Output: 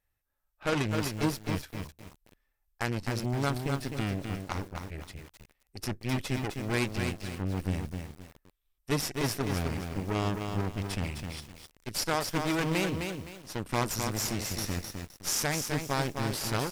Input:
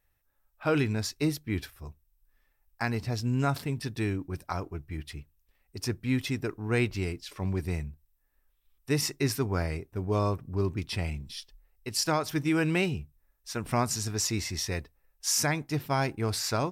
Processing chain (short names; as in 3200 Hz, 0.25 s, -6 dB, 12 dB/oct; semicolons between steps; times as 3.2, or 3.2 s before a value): added harmonics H 2 -21 dB, 3 -15 dB, 5 -44 dB, 8 -17 dB, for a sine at -15 dBFS; downsampling 32000 Hz; lo-fi delay 0.258 s, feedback 35%, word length 8-bit, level -5 dB